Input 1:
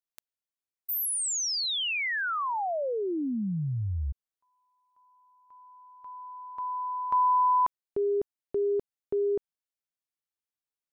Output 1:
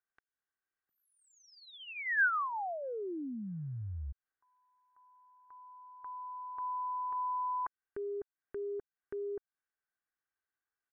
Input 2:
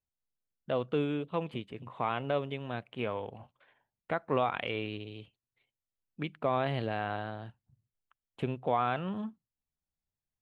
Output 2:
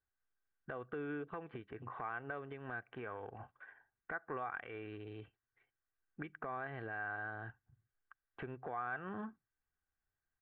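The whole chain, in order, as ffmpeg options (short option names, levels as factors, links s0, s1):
-af "aecho=1:1:2.6:0.42,acompressor=threshold=0.0141:ratio=5:attack=0.12:release=225:knee=1:detection=rms,lowpass=f=1600:t=q:w=4.9,volume=0.841"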